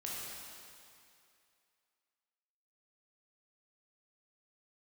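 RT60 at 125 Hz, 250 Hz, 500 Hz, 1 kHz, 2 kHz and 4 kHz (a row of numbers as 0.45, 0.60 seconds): 2.2, 2.3, 2.4, 2.5, 2.5, 2.4 seconds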